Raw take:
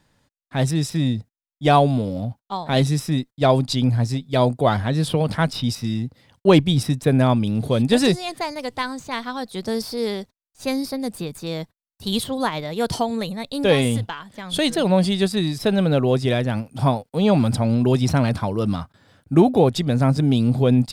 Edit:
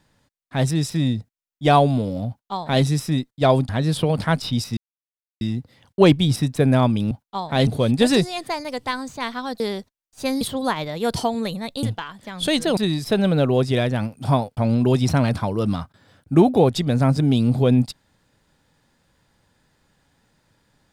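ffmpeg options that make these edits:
-filter_complex "[0:a]asplit=10[s0][s1][s2][s3][s4][s5][s6][s7][s8][s9];[s0]atrim=end=3.692[s10];[s1]atrim=start=4.798:end=5.88,asetpts=PTS-STARTPTS,afade=t=out:st=1.078:d=0.004:c=hsin,apad=pad_dur=0.64[s11];[s2]atrim=start=5.88:end=7.582,asetpts=PTS-STARTPTS,afade=t=in:d=0.004:c=hsin[s12];[s3]atrim=start=2.278:end=2.842[s13];[s4]atrim=start=7.578:end=9.512[s14];[s5]atrim=start=10.018:end=10.832[s15];[s6]atrim=start=12.168:end=13.592[s16];[s7]atrim=start=13.938:end=14.882[s17];[s8]atrim=start=15.308:end=17.112[s18];[s9]atrim=start=17.568[s19];[s11][s12]concat=n=2:v=0:a=1[s20];[s10][s20]acrossfade=d=0.004:c1=hsin:c2=hsin[s21];[s21][s13]acrossfade=d=0.004:c1=hsin:c2=hsin[s22];[s22][s14]acrossfade=d=0.004:c1=hsin:c2=hsin[s23];[s23][s15]acrossfade=d=0.004:c1=hsin:c2=hsin[s24];[s24][s16]acrossfade=d=0.004:c1=hsin:c2=hsin[s25];[s25][s17]acrossfade=d=0.004:c1=hsin:c2=hsin[s26];[s26][s18]acrossfade=d=0.004:c1=hsin:c2=hsin[s27];[s27][s19]acrossfade=d=0.004:c1=hsin:c2=hsin"

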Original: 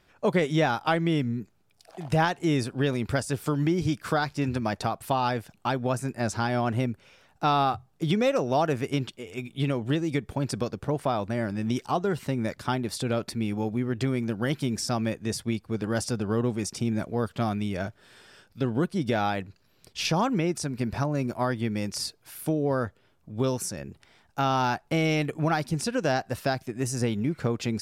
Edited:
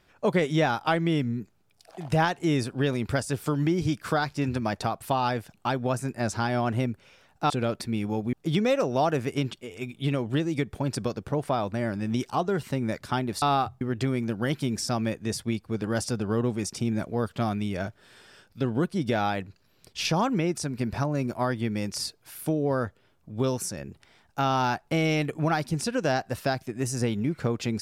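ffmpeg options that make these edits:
-filter_complex "[0:a]asplit=5[s0][s1][s2][s3][s4];[s0]atrim=end=7.502[s5];[s1]atrim=start=12.978:end=13.812[s6];[s2]atrim=start=7.888:end=12.982[s7];[s3]atrim=start=7.498:end=7.892[s8];[s4]atrim=start=13.808[s9];[s5][s6]acrossfade=d=0.004:c1=hsin:c2=hsin[s10];[s10][s7]acrossfade=d=0.004:c1=hsin:c2=hsin[s11];[s11][s8]acrossfade=d=0.004:c1=hsin:c2=hsin[s12];[s12][s9]acrossfade=d=0.004:c1=hsin:c2=hsin"

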